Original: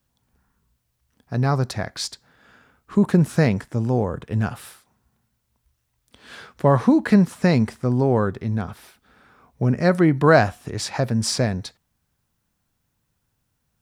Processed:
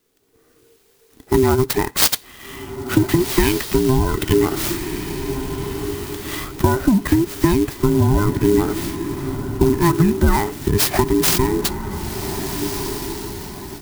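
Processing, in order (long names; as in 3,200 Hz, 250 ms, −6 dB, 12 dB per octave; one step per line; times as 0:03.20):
frequency inversion band by band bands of 500 Hz
bass and treble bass +9 dB, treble +10 dB
downward compressor 10 to 1, threshold −22 dBFS, peak gain reduction 17.5 dB
0:02.02–0:04.33: parametric band 3,000 Hz +14 dB 1.3 octaves
feedback delay with all-pass diffusion 1,508 ms, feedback 41%, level −10 dB
automatic gain control gain up to 11 dB
converter with an unsteady clock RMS 0.045 ms
level +1 dB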